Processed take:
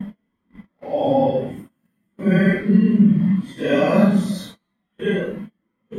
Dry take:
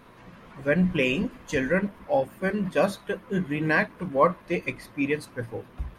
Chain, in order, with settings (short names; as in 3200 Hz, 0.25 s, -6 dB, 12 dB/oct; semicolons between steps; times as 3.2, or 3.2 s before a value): Paulstretch 4.2×, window 0.05 s, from 1.89; gate -42 dBFS, range -30 dB; small resonant body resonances 210/2000/3200 Hz, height 14 dB, ringing for 25 ms